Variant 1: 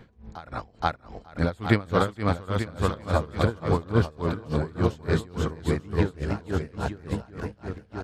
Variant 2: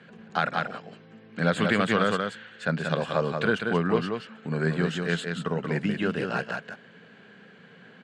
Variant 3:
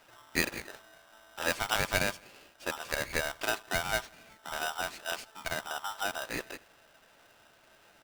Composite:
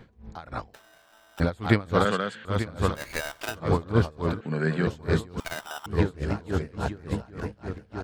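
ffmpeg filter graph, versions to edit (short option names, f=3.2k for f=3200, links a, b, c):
-filter_complex "[2:a]asplit=3[a][b][c];[1:a]asplit=2[d][e];[0:a]asplit=6[f][g][h][i][j][k];[f]atrim=end=0.742[l];[a]atrim=start=0.738:end=1.402[m];[g]atrim=start=1.398:end=2.052[n];[d]atrim=start=2.048:end=2.452[o];[h]atrim=start=2.448:end=3.04[p];[b]atrim=start=2.94:end=3.57[q];[i]atrim=start=3.47:end=4.412[r];[e]atrim=start=4.408:end=4.872[s];[j]atrim=start=4.868:end=5.402[t];[c]atrim=start=5.398:end=5.862[u];[k]atrim=start=5.858[v];[l][m]acrossfade=d=0.004:c1=hsin:c2=hsin[w];[w][n]acrossfade=d=0.004:c1=hsin:c2=hsin[x];[x][o]acrossfade=d=0.004:c1=hsin:c2=hsin[y];[y][p]acrossfade=d=0.004:c1=hsin:c2=hsin[z];[z][q]acrossfade=d=0.1:c1=tri:c2=tri[aa];[aa][r]acrossfade=d=0.1:c1=tri:c2=tri[ab];[ab][s]acrossfade=d=0.004:c1=hsin:c2=hsin[ac];[ac][t]acrossfade=d=0.004:c1=hsin:c2=hsin[ad];[ad][u]acrossfade=d=0.004:c1=hsin:c2=hsin[ae];[ae][v]acrossfade=d=0.004:c1=hsin:c2=hsin"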